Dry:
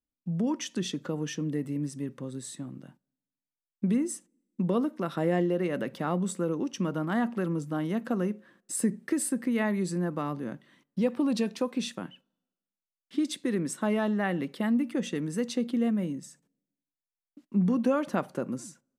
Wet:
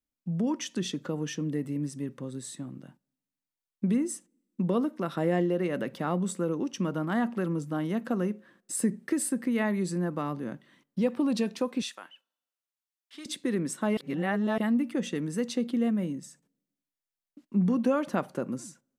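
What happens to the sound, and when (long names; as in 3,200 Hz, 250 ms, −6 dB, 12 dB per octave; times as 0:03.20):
0:11.82–0:13.26: high-pass filter 880 Hz
0:13.97–0:14.58: reverse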